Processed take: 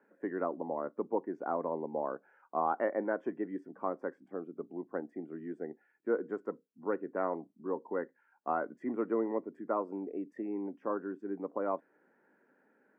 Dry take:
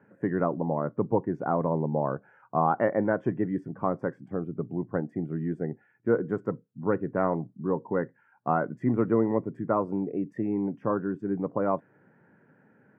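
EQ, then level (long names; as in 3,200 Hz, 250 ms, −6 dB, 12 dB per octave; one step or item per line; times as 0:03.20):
high-pass filter 260 Hz 24 dB per octave
−6.5 dB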